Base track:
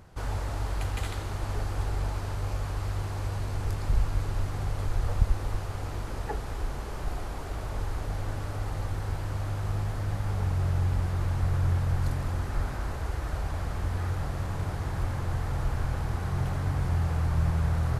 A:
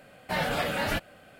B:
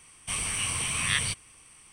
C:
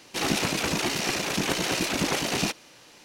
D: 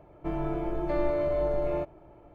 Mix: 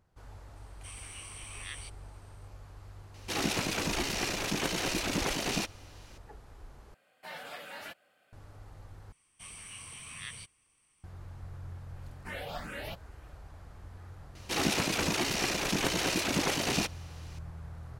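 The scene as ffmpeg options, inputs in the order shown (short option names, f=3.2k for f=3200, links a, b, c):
-filter_complex "[2:a]asplit=2[a][b];[3:a]asplit=2[c][d];[1:a]asplit=2[e][f];[0:a]volume=-18dB[g];[a]highpass=330[h];[e]highpass=f=720:p=1[i];[f]asplit=2[j][k];[k]afreqshift=2.4[l];[j][l]amix=inputs=2:normalize=1[m];[g]asplit=3[n][o][p];[n]atrim=end=6.944[q];[i]atrim=end=1.39,asetpts=PTS-STARTPTS,volume=-13dB[r];[o]atrim=start=8.326:end=9.124[s];[b]atrim=end=1.92,asetpts=PTS-STARTPTS,volume=-16.5dB[t];[p]atrim=start=11.036[u];[h]atrim=end=1.92,asetpts=PTS-STARTPTS,volume=-16.5dB,afade=t=in:d=0.004:c=hsin,afade=t=out:st=1.916:d=0.004:c=hsin,adelay=560[v];[c]atrim=end=3.04,asetpts=PTS-STARTPTS,volume=-5.5dB,afade=t=in:d=0.004:c=hsin,afade=t=out:st=3.036:d=0.004:c=hsin,adelay=3140[w];[m]atrim=end=1.39,asetpts=PTS-STARTPTS,volume=-9dB,afade=t=in:d=0.004:c=hsin,afade=t=out:st=1.386:d=0.004:c=hsin,adelay=11960[x];[d]atrim=end=3.04,asetpts=PTS-STARTPTS,volume=-3.5dB,afade=t=in:d=0.004:c=hsin,afade=t=out:st=3.036:d=0.004:c=hsin,adelay=14350[y];[q][r]acrossfade=d=0.004:c1=hsin:c2=hsin[z];[z][s]acrossfade=d=0.004:c1=hsin:c2=hsin[aa];[aa][t]acrossfade=d=0.004:c1=hsin:c2=hsin[ab];[ab][u]acrossfade=d=0.004:c1=hsin:c2=hsin[ac];[ac][v][w][x][y]amix=inputs=5:normalize=0"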